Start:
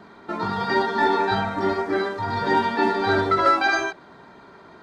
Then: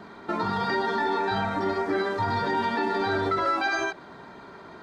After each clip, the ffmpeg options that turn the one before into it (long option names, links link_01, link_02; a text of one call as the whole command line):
ffmpeg -i in.wav -af "alimiter=limit=-19.5dB:level=0:latency=1:release=117,volume=2dB" out.wav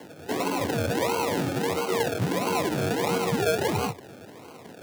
ffmpeg -i in.wav -af "acrusher=samples=36:mix=1:aa=0.000001:lfo=1:lforange=21.6:lforate=1.5,afreqshift=80" out.wav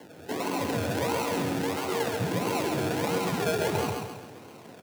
ffmpeg -i in.wav -af "aecho=1:1:134|268|402|536|670|804:0.631|0.29|0.134|0.0614|0.0283|0.013,volume=-4dB" out.wav